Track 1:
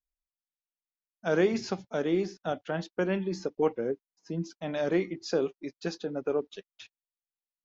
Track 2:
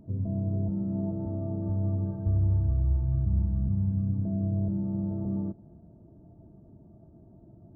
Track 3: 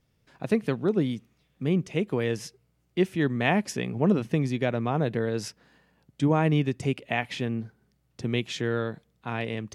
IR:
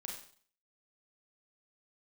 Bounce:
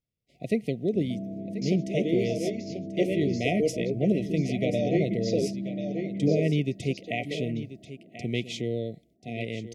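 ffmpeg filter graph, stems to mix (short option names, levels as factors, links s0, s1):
-filter_complex "[0:a]volume=1.06,asplit=2[s0][s1];[s1]volume=0.422[s2];[1:a]highpass=f=190:w=0.5412,highpass=f=190:w=1.3066,acompressor=threshold=0.0126:ratio=2,adelay=850,volume=1.41,asplit=2[s3][s4];[s4]volume=0.178[s5];[2:a]agate=range=0.141:threshold=0.00126:ratio=16:detection=peak,volume=0.794,asplit=3[s6][s7][s8];[s7]volume=0.211[s9];[s8]apad=whole_len=336943[s10];[s0][s10]sidechaingate=range=0.0158:threshold=0.00891:ratio=16:detection=peak[s11];[s2][s5][s9]amix=inputs=3:normalize=0,aecho=0:1:1036:1[s12];[s11][s3][s6][s12]amix=inputs=4:normalize=0,afftfilt=real='re*(1-between(b*sr/4096,740,1900))':imag='im*(1-between(b*sr/4096,740,1900))':win_size=4096:overlap=0.75"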